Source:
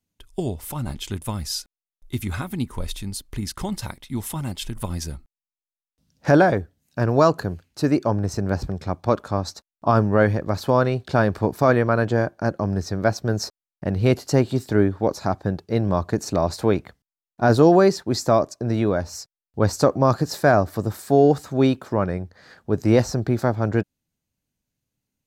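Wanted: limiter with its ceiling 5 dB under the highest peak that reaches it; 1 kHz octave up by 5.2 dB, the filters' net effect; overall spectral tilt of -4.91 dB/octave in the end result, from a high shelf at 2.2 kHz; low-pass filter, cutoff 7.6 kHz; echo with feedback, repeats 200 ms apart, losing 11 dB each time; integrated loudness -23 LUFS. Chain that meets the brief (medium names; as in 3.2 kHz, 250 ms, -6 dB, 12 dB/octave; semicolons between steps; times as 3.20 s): low-pass 7.6 kHz; peaking EQ 1 kHz +8 dB; treble shelf 2.2 kHz -4 dB; peak limiter -5.5 dBFS; feedback delay 200 ms, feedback 28%, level -11 dB; trim -1.5 dB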